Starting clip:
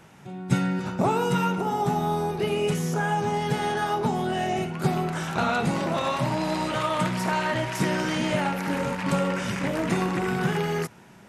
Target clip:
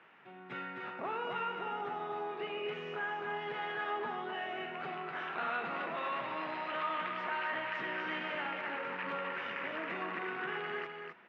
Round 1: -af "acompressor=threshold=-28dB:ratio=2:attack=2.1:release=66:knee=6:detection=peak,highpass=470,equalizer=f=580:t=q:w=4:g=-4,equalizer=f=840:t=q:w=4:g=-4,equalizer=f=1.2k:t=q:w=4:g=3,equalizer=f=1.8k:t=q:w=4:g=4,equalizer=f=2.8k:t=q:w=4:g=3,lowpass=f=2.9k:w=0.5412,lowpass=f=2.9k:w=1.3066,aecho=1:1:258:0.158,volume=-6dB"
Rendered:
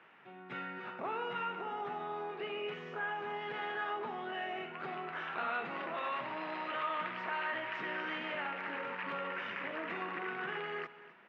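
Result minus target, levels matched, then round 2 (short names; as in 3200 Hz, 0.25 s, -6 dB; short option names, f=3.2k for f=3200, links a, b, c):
echo-to-direct -10.5 dB
-af "acompressor=threshold=-28dB:ratio=2:attack=2.1:release=66:knee=6:detection=peak,highpass=470,equalizer=f=580:t=q:w=4:g=-4,equalizer=f=840:t=q:w=4:g=-4,equalizer=f=1.2k:t=q:w=4:g=3,equalizer=f=1.8k:t=q:w=4:g=4,equalizer=f=2.8k:t=q:w=4:g=3,lowpass=f=2.9k:w=0.5412,lowpass=f=2.9k:w=1.3066,aecho=1:1:258:0.531,volume=-6dB"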